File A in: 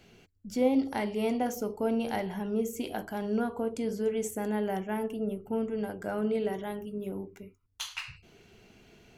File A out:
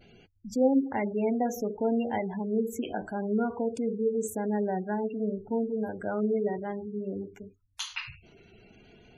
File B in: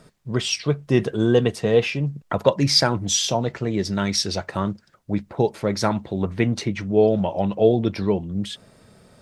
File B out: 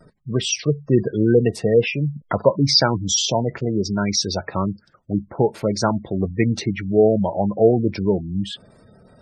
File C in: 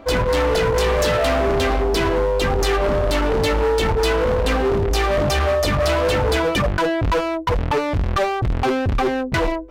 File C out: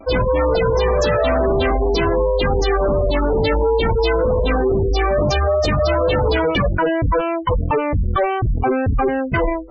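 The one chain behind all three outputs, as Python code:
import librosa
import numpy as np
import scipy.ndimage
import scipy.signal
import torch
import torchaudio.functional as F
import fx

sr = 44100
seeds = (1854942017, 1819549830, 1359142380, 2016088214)

y = fx.vibrato(x, sr, rate_hz=0.57, depth_cents=34.0)
y = fx.spec_gate(y, sr, threshold_db=-20, keep='strong')
y = F.gain(torch.from_numpy(y), 2.0).numpy()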